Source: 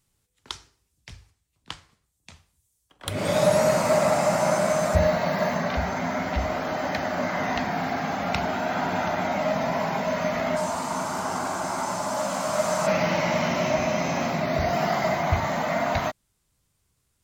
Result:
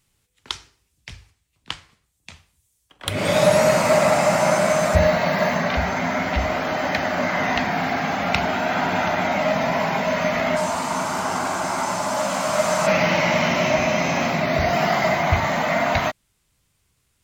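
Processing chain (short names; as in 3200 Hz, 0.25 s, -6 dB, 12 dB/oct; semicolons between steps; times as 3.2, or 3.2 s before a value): bell 2500 Hz +5 dB 1.3 oct; gain +3.5 dB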